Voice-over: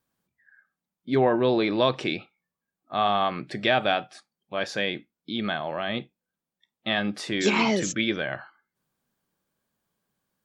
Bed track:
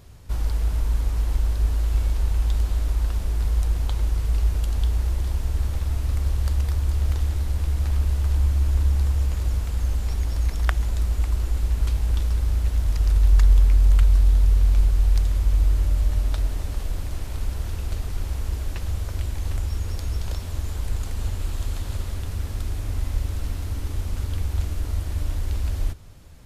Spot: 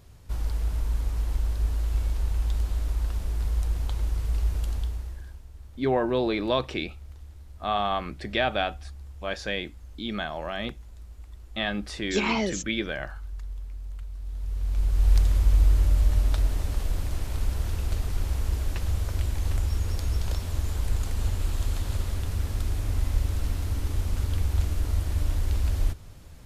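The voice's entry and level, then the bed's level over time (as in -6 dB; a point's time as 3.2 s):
4.70 s, -3.0 dB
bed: 4.71 s -4.5 dB
5.47 s -21.5 dB
14.15 s -21.5 dB
15.12 s 0 dB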